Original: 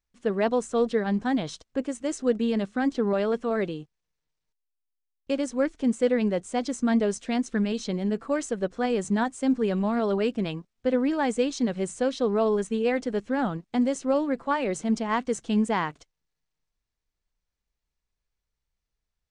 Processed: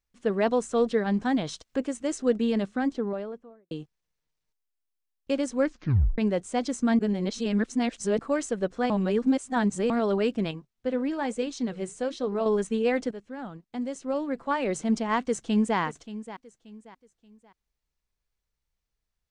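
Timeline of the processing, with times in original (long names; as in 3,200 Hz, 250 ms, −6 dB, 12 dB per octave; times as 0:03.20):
0:00.47–0:01.89: one half of a high-frequency compander encoder only
0:02.53–0:03.71: fade out and dull
0:05.66: tape stop 0.52 s
0:06.99–0:08.19: reverse
0:08.90–0:09.90: reverse
0:10.51–0:12.46: flanger 1.1 Hz, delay 1 ms, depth 8.4 ms, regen −76%
0:13.11–0:14.70: fade in quadratic, from −12.5 dB
0:15.21–0:15.78: delay throw 580 ms, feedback 35%, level −14 dB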